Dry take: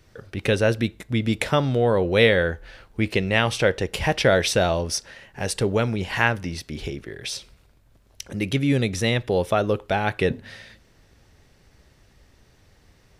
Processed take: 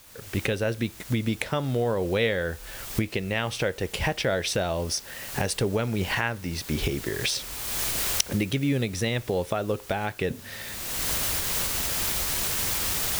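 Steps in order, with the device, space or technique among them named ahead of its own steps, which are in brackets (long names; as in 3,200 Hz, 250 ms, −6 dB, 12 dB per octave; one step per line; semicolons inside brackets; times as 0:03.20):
cheap recorder with automatic gain (white noise bed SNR 21 dB; camcorder AGC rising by 31 dB per second)
level −8 dB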